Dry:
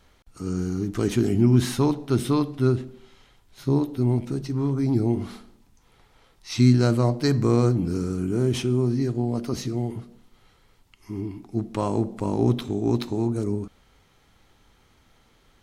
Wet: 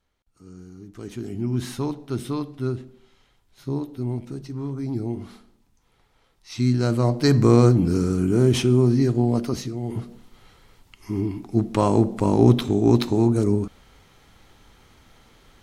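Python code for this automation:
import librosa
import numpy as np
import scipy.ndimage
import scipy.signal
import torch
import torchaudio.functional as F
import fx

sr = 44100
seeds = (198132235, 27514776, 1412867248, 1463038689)

y = fx.gain(x, sr, db=fx.line((0.75, -16.0), (1.7, -5.5), (6.56, -5.5), (7.37, 5.0), (9.37, 5.0), (9.8, -4.0), (9.97, 6.0)))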